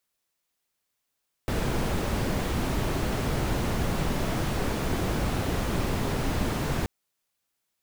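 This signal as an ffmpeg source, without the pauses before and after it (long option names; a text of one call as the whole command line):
ffmpeg -f lavfi -i "anoisesrc=color=brown:amplitude=0.221:duration=5.38:sample_rate=44100:seed=1" out.wav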